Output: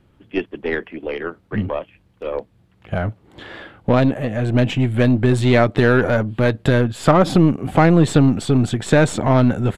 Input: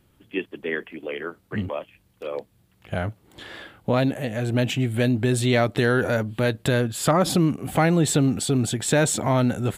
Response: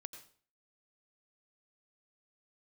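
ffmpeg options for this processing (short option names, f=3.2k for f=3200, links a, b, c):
-af "aeval=exprs='0.398*(cos(1*acos(clip(val(0)/0.398,-1,1)))-cos(1*PI/2))+0.0224*(cos(3*acos(clip(val(0)/0.398,-1,1)))-cos(3*PI/2))+0.0224*(cos(6*acos(clip(val(0)/0.398,-1,1)))-cos(6*PI/2))':c=same,aemphasis=mode=reproduction:type=75fm,aresample=32000,aresample=44100,volume=6.5dB"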